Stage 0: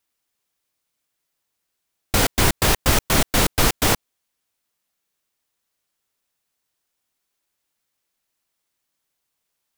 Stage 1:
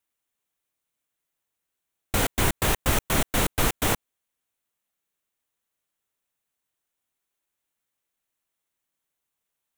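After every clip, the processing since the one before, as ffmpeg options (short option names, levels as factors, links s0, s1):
-af "equalizer=f=4900:w=2.9:g=-8,volume=0.562"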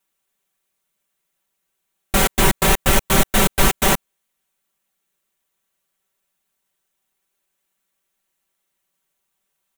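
-af "aecho=1:1:5.2:0.93,volume=1.78"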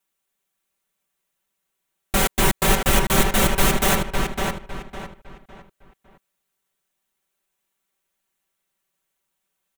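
-filter_complex "[0:a]asplit=2[s0][s1];[s1]adelay=556,lowpass=f=3500:p=1,volume=0.668,asplit=2[s2][s3];[s3]adelay=556,lowpass=f=3500:p=1,volume=0.33,asplit=2[s4][s5];[s5]adelay=556,lowpass=f=3500:p=1,volume=0.33,asplit=2[s6][s7];[s7]adelay=556,lowpass=f=3500:p=1,volume=0.33[s8];[s0][s2][s4][s6][s8]amix=inputs=5:normalize=0,volume=0.708"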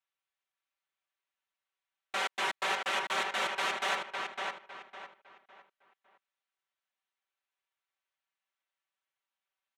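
-af "highpass=750,lowpass=3900,volume=0.422"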